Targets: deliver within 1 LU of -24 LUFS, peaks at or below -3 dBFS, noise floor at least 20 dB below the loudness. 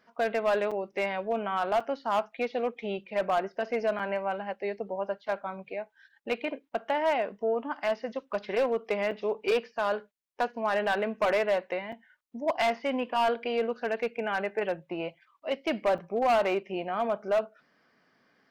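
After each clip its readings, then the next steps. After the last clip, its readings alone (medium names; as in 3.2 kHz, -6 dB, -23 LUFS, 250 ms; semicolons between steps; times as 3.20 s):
clipped samples 1.2%; clipping level -20.0 dBFS; dropouts 6; longest dropout 5.0 ms; loudness -30.0 LUFS; peak level -20.0 dBFS; loudness target -24.0 LUFS
-> clip repair -20 dBFS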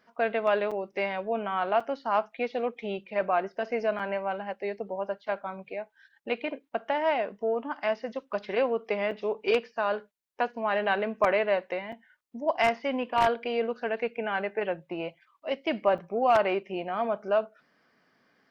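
clipped samples 0.0%; dropouts 6; longest dropout 5.0 ms
-> interpolate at 0.71/1.80/3.99/9.11/11.92/15.98 s, 5 ms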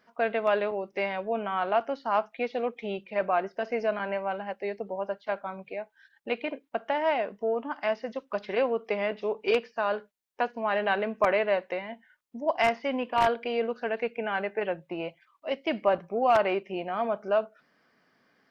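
dropouts 0; loudness -29.5 LUFS; peak level -11.0 dBFS; loudness target -24.0 LUFS
-> trim +5.5 dB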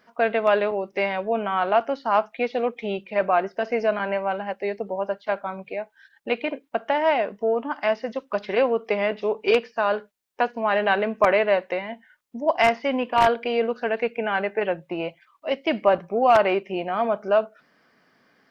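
loudness -24.0 LUFS; peak level -5.5 dBFS; noise floor -63 dBFS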